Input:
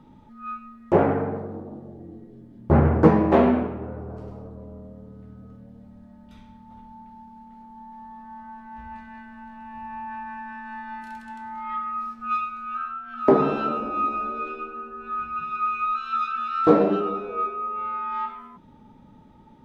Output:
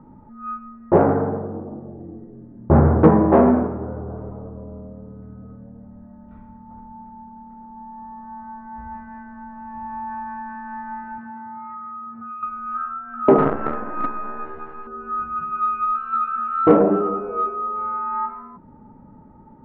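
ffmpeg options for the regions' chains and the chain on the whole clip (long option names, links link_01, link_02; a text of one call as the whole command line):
ffmpeg -i in.wav -filter_complex "[0:a]asettb=1/sr,asplit=3[link_01][link_02][link_03];[link_01]atrim=end=11.184[link_04];[link_02]atrim=start=11.18:end=12.43,asetpts=PTS-STARTPTS,afade=type=in:duration=0.004:curve=qsin,afade=type=out:start_time=1.246:duration=0.004:curve=qsin,highpass=frequency=100:width=0.5412,highpass=frequency=100:width=1.3066,lowshelf=frequency=150:gain=9.5,acompressor=threshold=-36dB:ratio=6:attack=3.2:release=140:knee=1:detection=peak[link_05];[link_03]atrim=start=12.426[link_06];[link_04][link_05]acrossfade=duration=0.004:curve1=hsin:curve2=qsin[link_07];[link_07][link_06]acrossfade=duration=0.004:curve1=qsin:curve2=hsin,asettb=1/sr,asplit=3[link_08][link_09][link_10];[link_08]atrim=end=13.384[link_11];[link_09]atrim=start=13.38:end=14.87,asetpts=PTS-STARTPTS,afade=type=in:duration=0.004:curve=qsin,afade=type=out:start_time=1.486:duration=0.004:curve=qsin,lowpass=2800,acrusher=bits=4:dc=4:mix=0:aa=0.000001[link_12];[link_10]atrim=start=14.866[link_13];[link_11][link_12]acrossfade=duration=0.004:curve1=hsin:curve2=qsin[link_14];[link_14][link_13]acrossfade=duration=0.004:curve1=qsin:curve2=hsin,lowpass=frequency=1500:width=0.5412,lowpass=frequency=1500:width=1.3066,acontrast=40,volume=-1dB" out.wav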